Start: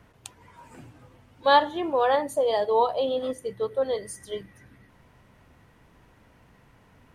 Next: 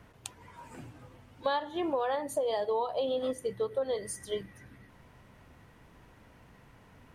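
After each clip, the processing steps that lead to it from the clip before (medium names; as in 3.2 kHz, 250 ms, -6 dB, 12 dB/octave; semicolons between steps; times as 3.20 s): compression 10:1, threshold -27 dBFS, peak gain reduction 14.5 dB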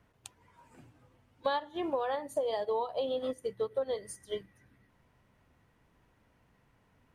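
upward expansion 1.5:1, over -48 dBFS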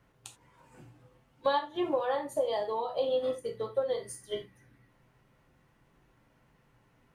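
gated-style reverb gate 110 ms falling, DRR 2 dB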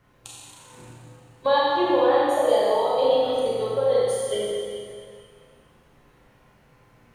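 Schroeder reverb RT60 2.2 s, combs from 30 ms, DRR -5 dB; trim +4 dB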